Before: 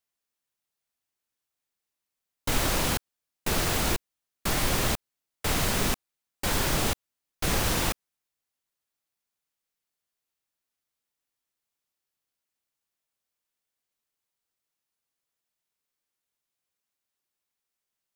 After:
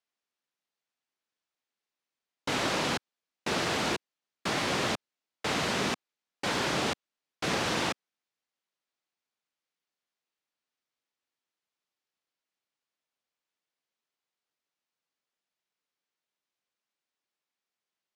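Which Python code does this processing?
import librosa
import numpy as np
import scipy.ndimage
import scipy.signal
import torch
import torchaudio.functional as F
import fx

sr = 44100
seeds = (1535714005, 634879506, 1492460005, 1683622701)

y = fx.bandpass_edges(x, sr, low_hz=180.0, high_hz=5200.0)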